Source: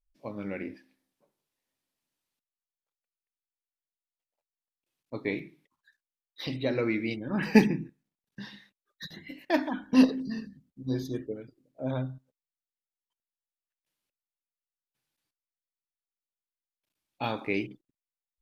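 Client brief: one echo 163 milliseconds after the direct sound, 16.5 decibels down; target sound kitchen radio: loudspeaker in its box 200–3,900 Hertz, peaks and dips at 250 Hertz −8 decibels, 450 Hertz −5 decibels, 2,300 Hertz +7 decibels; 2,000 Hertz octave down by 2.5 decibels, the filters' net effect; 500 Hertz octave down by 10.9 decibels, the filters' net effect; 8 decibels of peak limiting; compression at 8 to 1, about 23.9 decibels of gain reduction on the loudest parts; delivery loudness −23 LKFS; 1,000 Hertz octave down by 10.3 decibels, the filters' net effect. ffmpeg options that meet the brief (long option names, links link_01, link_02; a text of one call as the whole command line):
ffmpeg -i in.wav -af "equalizer=frequency=500:width_type=o:gain=-8,equalizer=frequency=1000:width_type=o:gain=-9,equalizer=frequency=2000:width_type=o:gain=-5.5,acompressor=threshold=-42dB:ratio=8,alimiter=level_in=13dB:limit=-24dB:level=0:latency=1,volume=-13dB,highpass=200,equalizer=frequency=250:width_type=q:width=4:gain=-8,equalizer=frequency=450:width_type=q:width=4:gain=-5,equalizer=frequency=2300:width_type=q:width=4:gain=7,lowpass=frequency=3900:width=0.5412,lowpass=frequency=3900:width=1.3066,aecho=1:1:163:0.15,volume=29.5dB" out.wav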